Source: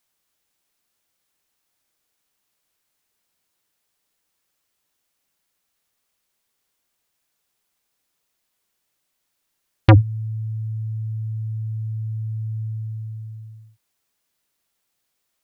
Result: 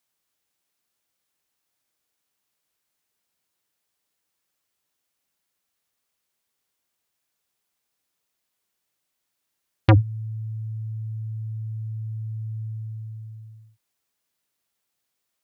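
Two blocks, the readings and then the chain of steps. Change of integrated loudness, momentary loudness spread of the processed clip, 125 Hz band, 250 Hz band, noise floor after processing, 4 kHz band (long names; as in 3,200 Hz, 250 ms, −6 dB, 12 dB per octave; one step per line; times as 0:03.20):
−4.0 dB, 19 LU, −4.0 dB, −4.0 dB, −79 dBFS, −4.0 dB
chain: high-pass filter 48 Hz
level −4 dB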